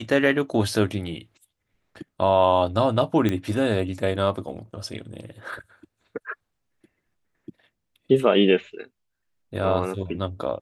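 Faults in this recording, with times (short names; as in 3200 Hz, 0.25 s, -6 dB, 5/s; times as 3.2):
3.29 pop -12 dBFS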